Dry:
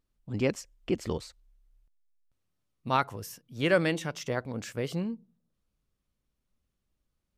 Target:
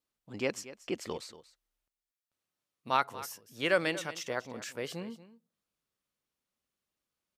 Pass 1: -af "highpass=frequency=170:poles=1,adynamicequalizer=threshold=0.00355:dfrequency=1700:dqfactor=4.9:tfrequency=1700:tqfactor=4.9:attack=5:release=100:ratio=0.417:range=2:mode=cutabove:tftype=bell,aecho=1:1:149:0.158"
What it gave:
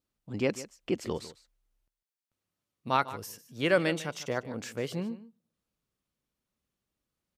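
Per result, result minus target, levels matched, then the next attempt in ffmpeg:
echo 85 ms early; 125 Hz band +6.0 dB
-af "highpass=frequency=170:poles=1,adynamicequalizer=threshold=0.00355:dfrequency=1700:dqfactor=4.9:tfrequency=1700:tqfactor=4.9:attack=5:release=100:ratio=0.417:range=2:mode=cutabove:tftype=bell,aecho=1:1:234:0.158"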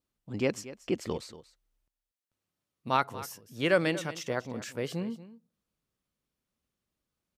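125 Hz band +6.5 dB
-af "highpass=frequency=600:poles=1,adynamicequalizer=threshold=0.00355:dfrequency=1700:dqfactor=4.9:tfrequency=1700:tqfactor=4.9:attack=5:release=100:ratio=0.417:range=2:mode=cutabove:tftype=bell,aecho=1:1:234:0.158"

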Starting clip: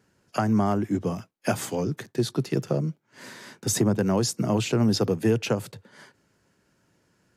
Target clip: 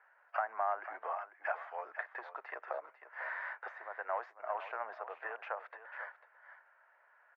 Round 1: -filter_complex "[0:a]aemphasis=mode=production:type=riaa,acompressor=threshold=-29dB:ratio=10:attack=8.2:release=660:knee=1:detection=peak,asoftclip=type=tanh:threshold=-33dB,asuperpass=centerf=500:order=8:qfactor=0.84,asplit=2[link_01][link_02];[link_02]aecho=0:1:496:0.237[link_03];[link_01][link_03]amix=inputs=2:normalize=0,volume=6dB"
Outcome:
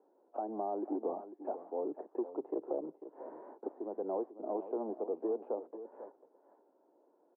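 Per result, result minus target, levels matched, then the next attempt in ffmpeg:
1,000 Hz band −6.5 dB; soft clipping: distortion +6 dB
-filter_complex "[0:a]aemphasis=mode=production:type=riaa,acompressor=threshold=-29dB:ratio=10:attack=8.2:release=660:knee=1:detection=peak,asoftclip=type=tanh:threshold=-33dB,asuperpass=centerf=1100:order=8:qfactor=0.84,asplit=2[link_01][link_02];[link_02]aecho=0:1:496:0.237[link_03];[link_01][link_03]amix=inputs=2:normalize=0,volume=6dB"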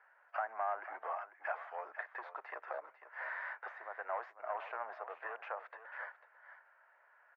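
soft clipping: distortion +6 dB
-filter_complex "[0:a]aemphasis=mode=production:type=riaa,acompressor=threshold=-29dB:ratio=10:attack=8.2:release=660:knee=1:detection=peak,asoftclip=type=tanh:threshold=-27dB,asuperpass=centerf=1100:order=8:qfactor=0.84,asplit=2[link_01][link_02];[link_02]aecho=0:1:496:0.237[link_03];[link_01][link_03]amix=inputs=2:normalize=0,volume=6dB"

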